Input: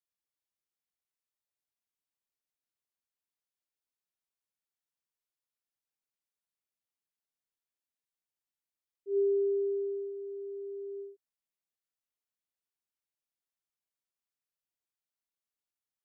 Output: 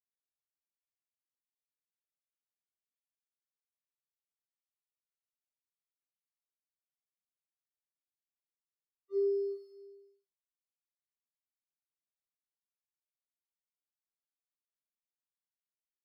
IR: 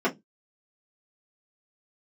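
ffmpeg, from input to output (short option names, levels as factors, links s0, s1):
-filter_complex "[0:a]highpass=450,acrusher=bits=4:mix=0:aa=0.5,asplit=2[s0][s1];[s1]adelay=34,volume=0.224[s2];[s0][s2]amix=inputs=2:normalize=0,aecho=1:1:68|95|132|393:0.251|0.299|0.15|0.188,afftfilt=real='re*2.45*eq(mod(b,6),0)':imag='im*2.45*eq(mod(b,6),0)':win_size=2048:overlap=0.75"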